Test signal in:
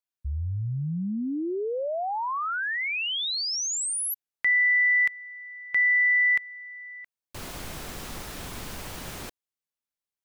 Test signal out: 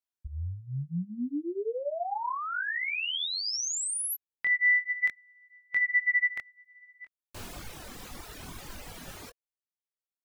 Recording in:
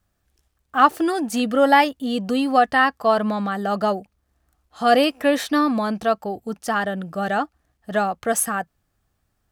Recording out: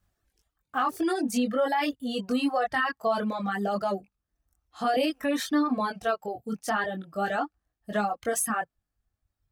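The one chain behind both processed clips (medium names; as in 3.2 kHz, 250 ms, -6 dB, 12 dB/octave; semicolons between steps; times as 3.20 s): chorus voices 2, 0.53 Hz, delay 22 ms, depth 2.2 ms; peak limiter -17 dBFS; reverb removal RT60 1.5 s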